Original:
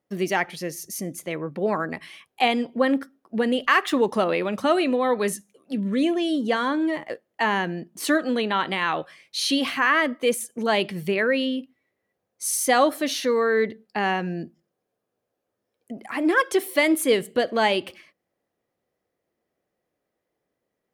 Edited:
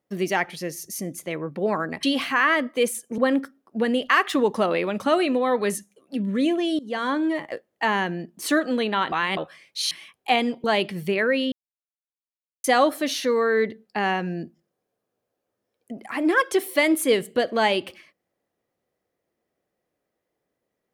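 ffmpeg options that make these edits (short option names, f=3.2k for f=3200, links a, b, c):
-filter_complex "[0:a]asplit=10[a][b][c][d][e][f][g][h][i][j];[a]atrim=end=2.032[k];[b]atrim=start=9.488:end=10.642[l];[c]atrim=start=2.758:end=6.37,asetpts=PTS-STARTPTS,afade=t=out:st=3.608:d=0.004:c=hsin:silence=0.0841395[m];[d]atrim=start=6.37:end=8.702,asetpts=PTS-STARTPTS,afade=t=in:d=0.31:silence=0.0841395[n];[e]atrim=start=8.698:end=8.952,asetpts=PTS-STARTPTS,areverse[o];[f]atrim=start=8.948:end=9.492[p];[g]atrim=start=2.028:end=2.762[q];[h]atrim=start=10.638:end=11.52,asetpts=PTS-STARTPTS,afade=t=out:st=0.878:d=0.004:c=hsin[r];[i]atrim=start=11.52:end=12.64,asetpts=PTS-STARTPTS,volume=0[s];[j]atrim=start=12.64,asetpts=PTS-STARTPTS,afade=t=in:d=0.004:c=hsin[t];[k][l]acrossfade=d=0.004:c1=hsin:c2=hsin[u];[m][n]concat=n=2:v=0:a=1[v];[u][v]acrossfade=d=0.004:c1=hsin:c2=hsin[w];[w][o]acrossfade=d=0.004:c1=hsin:c2=hsin[x];[x][p]acrossfade=d=0.004:c1=hsin:c2=hsin[y];[y][q]acrossfade=d=0.004:c1=hsin:c2=hsin[z];[r][s][t]concat=n=3:v=0:a=1[aa];[z][aa]acrossfade=d=0.004:c1=hsin:c2=hsin"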